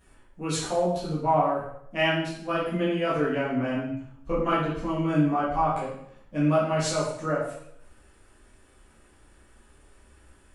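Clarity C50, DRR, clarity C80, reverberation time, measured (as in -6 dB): 2.0 dB, -10.0 dB, 6.0 dB, 0.70 s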